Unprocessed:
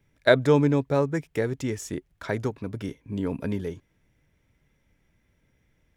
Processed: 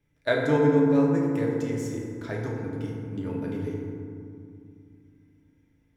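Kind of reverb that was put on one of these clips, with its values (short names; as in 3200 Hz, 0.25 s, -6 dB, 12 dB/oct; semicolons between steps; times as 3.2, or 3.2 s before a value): FDN reverb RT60 2.4 s, low-frequency decay 1.5×, high-frequency decay 0.4×, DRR -3 dB; gain -8 dB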